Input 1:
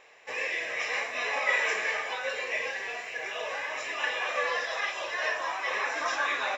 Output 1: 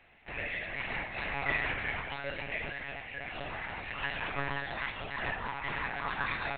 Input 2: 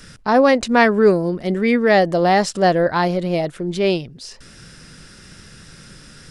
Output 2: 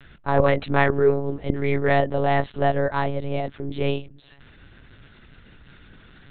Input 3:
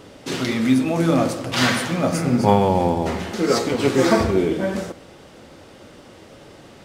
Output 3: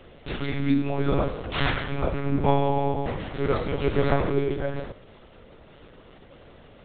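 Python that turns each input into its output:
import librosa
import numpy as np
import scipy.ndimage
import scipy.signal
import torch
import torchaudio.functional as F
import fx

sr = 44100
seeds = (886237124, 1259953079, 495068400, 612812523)

y = fx.lpc_monotone(x, sr, seeds[0], pitch_hz=140.0, order=10)
y = y * librosa.db_to_amplitude(-5.0)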